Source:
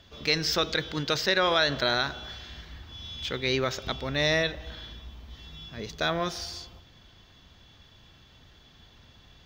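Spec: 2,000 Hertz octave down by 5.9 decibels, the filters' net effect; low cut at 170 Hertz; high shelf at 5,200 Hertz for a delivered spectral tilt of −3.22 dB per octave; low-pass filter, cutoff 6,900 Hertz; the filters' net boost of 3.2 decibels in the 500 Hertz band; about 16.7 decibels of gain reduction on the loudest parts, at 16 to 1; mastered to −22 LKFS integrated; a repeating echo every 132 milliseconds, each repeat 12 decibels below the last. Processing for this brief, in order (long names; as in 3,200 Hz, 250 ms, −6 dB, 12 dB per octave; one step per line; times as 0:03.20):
high-pass filter 170 Hz
low-pass filter 6,900 Hz
parametric band 500 Hz +4.5 dB
parametric band 2,000 Hz −9 dB
high-shelf EQ 5,200 Hz +5.5 dB
downward compressor 16 to 1, threshold −36 dBFS
repeating echo 132 ms, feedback 25%, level −12 dB
level +19 dB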